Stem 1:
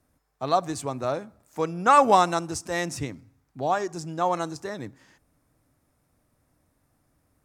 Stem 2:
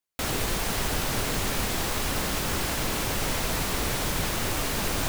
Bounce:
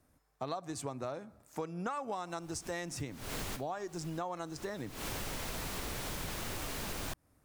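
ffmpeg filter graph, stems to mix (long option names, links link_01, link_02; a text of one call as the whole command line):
ffmpeg -i stem1.wav -i stem2.wav -filter_complex "[0:a]acompressor=threshold=-21dB:ratio=2,volume=-1dB,asplit=2[link_01][link_02];[1:a]adelay=2050,volume=-5dB[link_03];[link_02]apad=whole_len=314662[link_04];[link_03][link_04]sidechaincompress=threshold=-53dB:ratio=12:attack=21:release=178[link_05];[link_01][link_05]amix=inputs=2:normalize=0,acompressor=threshold=-36dB:ratio=6" out.wav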